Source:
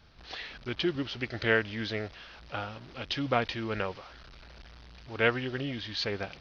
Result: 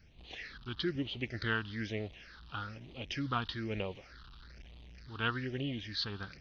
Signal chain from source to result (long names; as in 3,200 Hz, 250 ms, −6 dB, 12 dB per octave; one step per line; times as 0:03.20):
all-pass phaser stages 6, 1.1 Hz, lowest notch 550–1,500 Hz
level −2.5 dB